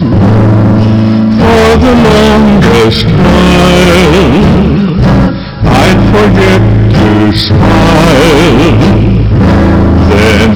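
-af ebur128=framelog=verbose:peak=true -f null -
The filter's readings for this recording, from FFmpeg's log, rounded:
Integrated loudness:
  I:          -5.3 LUFS
  Threshold: -15.3 LUFS
Loudness range:
  LRA:         1.3 LU
  Threshold: -25.2 LUFS
  LRA low:    -5.9 LUFS
  LRA high:   -4.5 LUFS
True peak:
  Peak:       -1.7 dBFS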